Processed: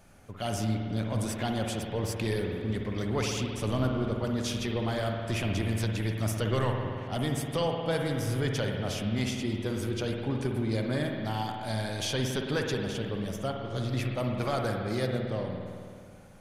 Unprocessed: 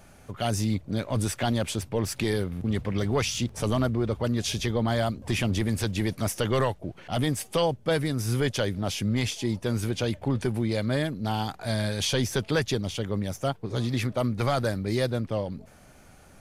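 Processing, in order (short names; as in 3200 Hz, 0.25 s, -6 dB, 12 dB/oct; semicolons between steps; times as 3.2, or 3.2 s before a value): spring tank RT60 2.3 s, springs 54 ms, chirp 80 ms, DRR 1.5 dB; gain -5.5 dB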